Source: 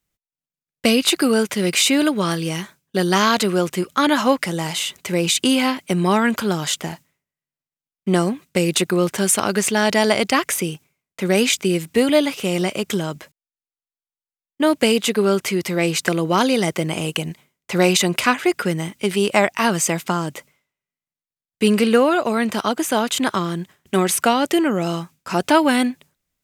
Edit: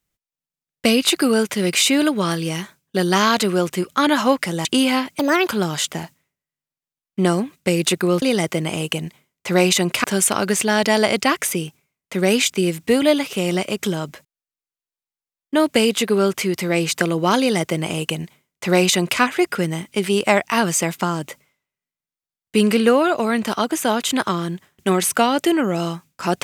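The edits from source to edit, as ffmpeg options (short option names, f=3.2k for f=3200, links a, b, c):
-filter_complex "[0:a]asplit=6[a][b][c][d][e][f];[a]atrim=end=4.652[g];[b]atrim=start=5.358:end=5.904[h];[c]atrim=start=5.9:end=6.38,asetpts=PTS-STARTPTS,asetrate=70560,aresample=44100[i];[d]atrim=start=6.376:end=9.112[j];[e]atrim=start=16.458:end=18.282[k];[f]atrim=start=9.108[l];[g][h]acrossfade=d=0.004:c1=hsin:c2=hsin[m];[m][i]acrossfade=d=0.004:c1=hsin:c2=hsin[n];[n][j]acrossfade=d=0.004:c1=hsin:c2=hsin[o];[o][k]acrossfade=d=0.004:c1=hsin:c2=hsin[p];[p][l]acrossfade=d=0.004:c1=hsin:c2=hsin"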